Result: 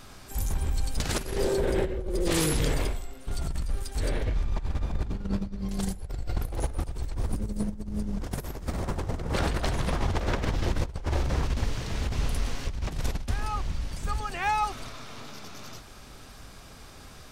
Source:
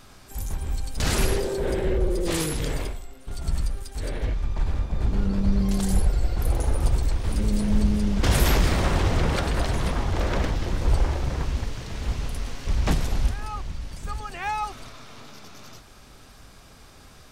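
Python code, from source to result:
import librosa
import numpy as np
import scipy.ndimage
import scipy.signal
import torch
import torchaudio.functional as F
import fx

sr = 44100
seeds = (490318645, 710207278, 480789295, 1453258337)

y = fx.peak_eq(x, sr, hz=3000.0, db=-9.0, octaves=2.0, at=(7.14, 9.34))
y = fx.over_compress(y, sr, threshold_db=-25.0, ratio=-0.5)
y = F.gain(torch.from_numpy(y), -1.5).numpy()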